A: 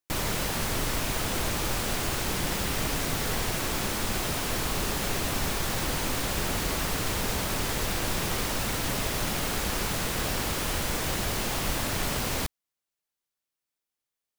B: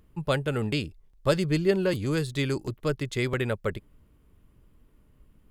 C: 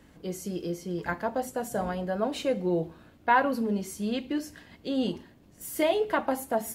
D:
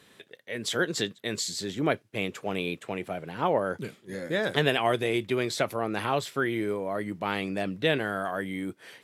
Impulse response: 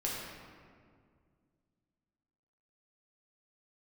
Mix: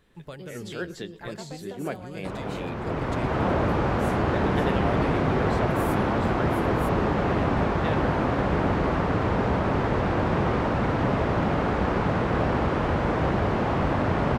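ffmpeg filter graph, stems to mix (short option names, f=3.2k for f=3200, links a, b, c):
-filter_complex "[0:a]lowpass=1.2k,dynaudnorm=f=610:g=3:m=12dB,highpass=67,adelay=2150,volume=-2.5dB[a];[1:a]acompressor=threshold=-28dB:ratio=6,volume=-9dB,asplit=2[b][c];[c]volume=-19.5dB[d];[2:a]acompressor=threshold=-32dB:ratio=6,adelay=150,volume=-6.5dB[e];[3:a]highshelf=f=2.7k:g=-11,volume=-5.5dB,asplit=2[f][g];[g]volume=-22dB[h];[d][h]amix=inputs=2:normalize=0,aecho=0:1:115:1[i];[a][b][e][f][i]amix=inputs=5:normalize=0"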